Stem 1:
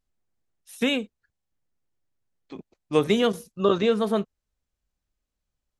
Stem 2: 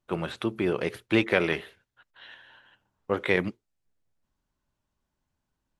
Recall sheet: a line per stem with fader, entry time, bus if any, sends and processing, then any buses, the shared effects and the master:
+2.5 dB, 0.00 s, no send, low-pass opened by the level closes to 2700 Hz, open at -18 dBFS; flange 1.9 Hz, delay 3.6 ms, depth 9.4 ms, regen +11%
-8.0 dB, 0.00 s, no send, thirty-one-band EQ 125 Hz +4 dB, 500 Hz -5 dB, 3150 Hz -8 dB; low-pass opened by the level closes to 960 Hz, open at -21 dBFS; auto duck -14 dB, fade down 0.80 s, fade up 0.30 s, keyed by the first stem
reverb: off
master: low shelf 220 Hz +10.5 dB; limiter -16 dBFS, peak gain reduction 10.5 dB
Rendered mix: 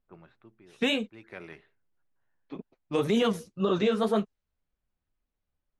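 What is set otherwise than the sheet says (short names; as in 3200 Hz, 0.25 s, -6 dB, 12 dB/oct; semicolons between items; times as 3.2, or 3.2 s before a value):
stem 2 -8.0 dB -> -18.0 dB; master: missing low shelf 220 Hz +10.5 dB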